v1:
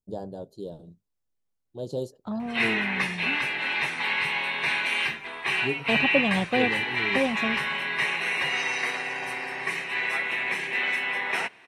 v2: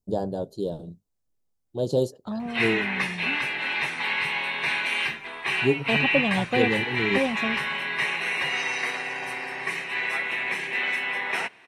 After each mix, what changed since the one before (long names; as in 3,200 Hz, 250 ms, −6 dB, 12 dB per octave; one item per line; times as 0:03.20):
first voice +8.0 dB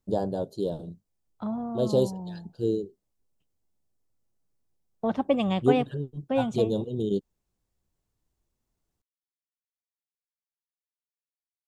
second voice: entry −0.85 s
background: muted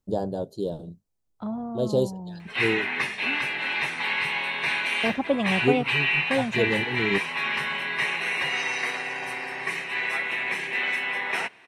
background: unmuted